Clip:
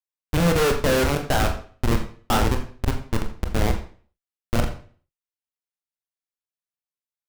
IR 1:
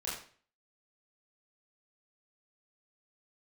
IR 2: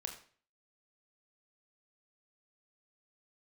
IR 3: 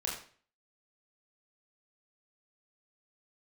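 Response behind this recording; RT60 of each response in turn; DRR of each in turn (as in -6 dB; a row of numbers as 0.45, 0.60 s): 2; 0.45, 0.45, 0.45 s; -8.0, 3.5, -3.5 dB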